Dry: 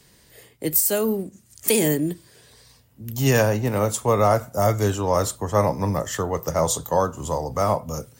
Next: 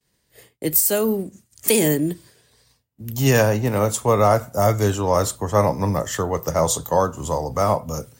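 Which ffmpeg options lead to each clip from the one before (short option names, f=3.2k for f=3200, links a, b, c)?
-af "agate=range=-33dB:threshold=-44dB:ratio=3:detection=peak,volume=2dB"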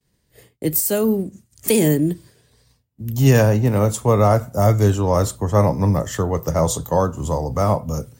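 -af "lowshelf=f=360:g=9,volume=-2.5dB"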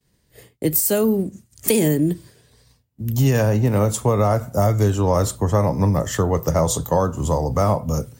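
-af "acompressor=threshold=-16dB:ratio=6,volume=2.5dB"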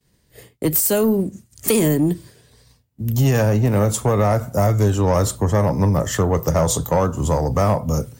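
-af "asoftclip=type=tanh:threshold=-11.5dB,volume=2.5dB"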